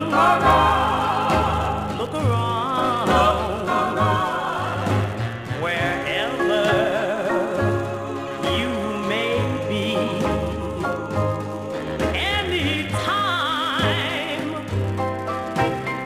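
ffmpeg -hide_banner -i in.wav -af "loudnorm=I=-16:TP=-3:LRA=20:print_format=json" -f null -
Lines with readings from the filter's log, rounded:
"input_i" : "-21.8",
"input_tp" : "-6.8",
"input_lra" : "2.7",
"input_thresh" : "-31.8",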